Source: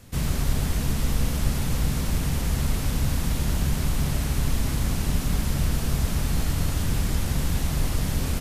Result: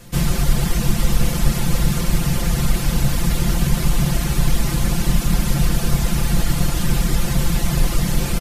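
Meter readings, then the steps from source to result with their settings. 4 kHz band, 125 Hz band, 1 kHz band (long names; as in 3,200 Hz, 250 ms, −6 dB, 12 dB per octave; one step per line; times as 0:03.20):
+6.5 dB, +5.5 dB, +7.0 dB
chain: reverb reduction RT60 0.52 s
comb filter 5.8 ms, depth 80%
level +6 dB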